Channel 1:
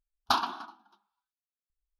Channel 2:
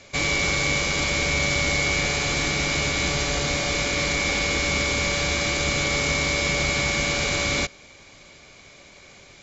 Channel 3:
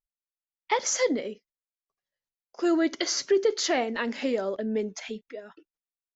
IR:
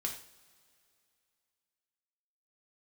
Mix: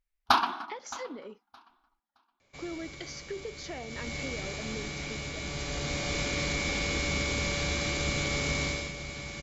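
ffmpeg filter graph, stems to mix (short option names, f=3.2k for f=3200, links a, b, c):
-filter_complex "[0:a]equalizer=f=2.1k:w=2.6:g=10,volume=3dB,asplit=2[a][b];[b]volume=-18.5dB[c];[1:a]acrossover=split=390|3000[d][e][f];[e]acompressor=threshold=-36dB:ratio=1.5[g];[d][g][f]amix=inputs=3:normalize=0,adelay=2400,volume=-4dB,afade=t=in:st=3.84:d=0.32:silence=0.354813,afade=t=in:st=5.43:d=0.76:silence=0.446684,afade=t=out:st=8.64:d=0.28:silence=0.334965[h];[2:a]acompressor=threshold=-32dB:ratio=3,volume=-7dB[i];[c]aecho=0:1:618|1236|1854:1|0.2|0.04[j];[a][h][i][j]amix=inputs=4:normalize=0,highshelf=f=4k:g=-5.5"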